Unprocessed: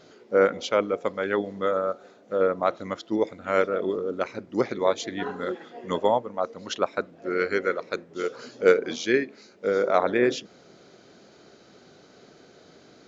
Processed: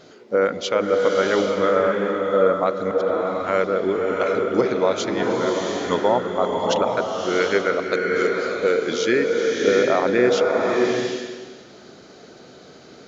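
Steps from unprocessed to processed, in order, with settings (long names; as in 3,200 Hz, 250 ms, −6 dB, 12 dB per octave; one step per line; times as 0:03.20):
brickwall limiter −13.5 dBFS, peak gain reduction 8 dB
0:02.33–0:03.38: volume swells 270 ms
slow-attack reverb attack 740 ms, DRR 0.5 dB
level +5 dB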